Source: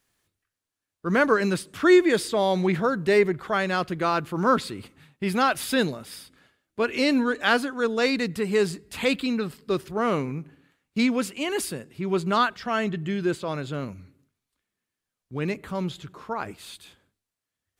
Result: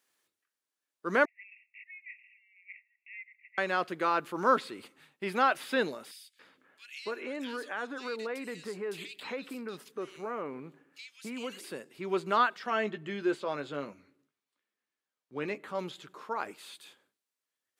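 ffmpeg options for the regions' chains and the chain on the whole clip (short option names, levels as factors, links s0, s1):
-filter_complex "[0:a]asettb=1/sr,asplit=3[s0][s1][s2];[s0]atrim=end=1.254[s3];[s1]atrim=start=1.25:end=3.58,asetpts=PTS-STARTPTS,afade=t=in:d=0.004:c=qsin,afade=t=out:st=2.326:d=0.004:c=qsin,acompressor=threshold=0.0282:ratio=3:attack=3.2:release=140:knee=1:detection=peak,asuperpass=centerf=2300:order=20:qfactor=2.7[s4];[s2]atrim=start=3.576[s5];[s3][s4]acrossfade=d=0.004:c1=hsin:c2=qsin[s6];[s6][s5]acrossfade=d=0.004:c1=qsin:c2=hsin,asettb=1/sr,asplit=3[s7][s8][s9];[s7]atrim=end=6.114[s10];[s8]atrim=start=6.11:end=11.64,asetpts=PTS-STARTPTS,afade=t=in:d=0.004:c=qsin,afade=t=out:st=5.526:d=0.004:c=qsin,acompressor=threshold=0.0398:ratio=4:attack=3.2:release=140:knee=1:detection=peak,acrossover=split=2400[s11][s12];[s11]adelay=280[s13];[s13][s12]amix=inputs=2:normalize=0,atrim=end_sample=243873[s14];[s9]atrim=start=11.636[s15];[s10][s14]acrossfade=d=0.004:c1=hsin:c2=qsin[s16];[s16][s15]acrossfade=d=0.004:c1=qsin:c2=hsin,asettb=1/sr,asplit=3[s17][s18][s19];[s17]atrim=end=12.704[s20];[s18]atrim=start=12.7:end=15.79,asetpts=PTS-STARTPTS,afade=t=in:d=0.004:c=qsin,afade=t=out:st=3.086:d=0.004:c=qsin,lowpass=f=3900:p=1,asplit=2[s21][s22];[s22]adelay=14,volume=0.355[s23];[s21][s23]amix=inputs=2:normalize=0,atrim=end_sample=136269[s24];[s19]atrim=start=15.786[s25];[s20][s24]acrossfade=d=0.004:c1=hsin:c2=qsin[s26];[s26][s25]acrossfade=d=0.004:c1=qsin:c2=hsin,highpass=350,bandreject=f=690:w=19,acrossover=split=3200[s27][s28];[s28]acompressor=threshold=0.00562:ratio=4:attack=1:release=60[s29];[s27][s29]amix=inputs=2:normalize=0,volume=0.708"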